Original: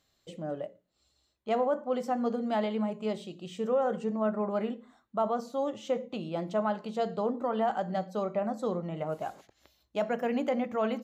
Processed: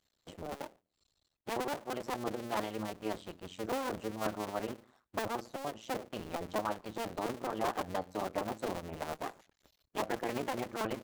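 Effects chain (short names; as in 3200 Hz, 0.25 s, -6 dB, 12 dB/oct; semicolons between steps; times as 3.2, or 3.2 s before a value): cycle switcher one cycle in 2, muted; harmonic-percussive split harmonic -8 dB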